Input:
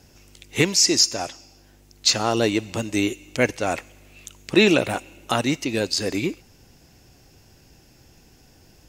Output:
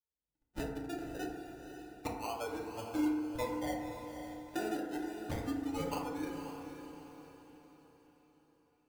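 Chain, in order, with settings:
spectral dynamics exaggerated over time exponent 3
treble cut that deepens with the level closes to 540 Hz, closed at −21 dBFS
high-pass filter 370 Hz 12 dB per octave
high-shelf EQ 2,600 Hz +8 dB
downward compressor 10 to 1, threshold −41 dBFS, peak gain reduction 22 dB
sample-and-hold swept by an LFO 32×, swing 60% 0.28 Hz
on a send: feedback delay with all-pass diffusion 523 ms, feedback 46%, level −8 dB
on the sum: feedback delay network reverb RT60 1.3 s, low-frequency decay 1.1×, high-frequency decay 0.3×, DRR −2 dB
level +1.5 dB

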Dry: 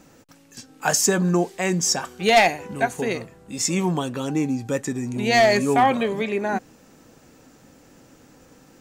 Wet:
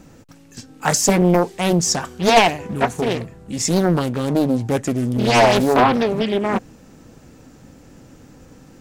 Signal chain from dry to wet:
low-shelf EQ 210 Hz +11 dB
highs frequency-modulated by the lows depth 0.96 ms
level +2 dB

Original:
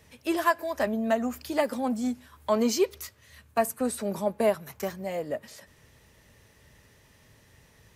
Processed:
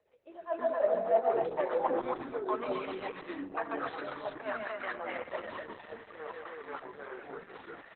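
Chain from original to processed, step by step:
parametric band 210 Hz −14.5 dB 1.7 octaves
in parallel at −10.5 dB: soft clipping −22 dBFS, distortion −12 dB
on the sum: loudspeakers that aren't time-aligned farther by 48 metres −10 dB, 90 metres −8 dB
spring reverb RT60 2 s, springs 37 ms, chirp 60 ms, DRR 14 dB
dynamic equaliser 280 Hz, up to −4 dB, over −38 dBFS, Q 0.73
rotating-speaker cabinet horn 7.5 Hz, later 0.6 Hz, at 0:04.42
reversed playback
downward compressor 6 to 1, threshold −39 dBFS, peak gain reduction 18.5 dB
reversed playback
band-pass filter sweep 530 Hz → 1,400 Hz, 0:00.48–0:02.67
delay with pitch and tempo change per echo 230 ms, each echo −5 semitones, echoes 3, each echo −6 dB
automatic gain control gain up to 16.5 dB
Opus 8 kbit/s 48,000 Hz

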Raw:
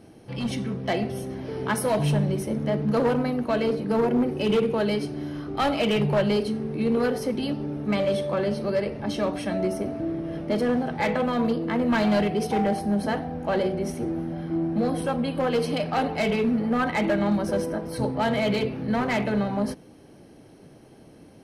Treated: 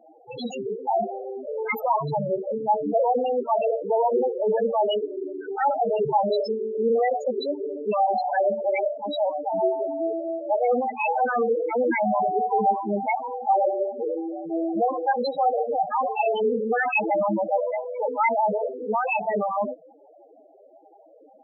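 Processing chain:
spectral tilt +2 dB per octave
formants moved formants +4 semitones
in parallel at −11.5 dB: dead-zone distortion −35 dBFS
on the sum: mid-hump overdrive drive 18 dB, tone 2,300 Hz, clips at −7 dBFS
spectral peaks only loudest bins 4

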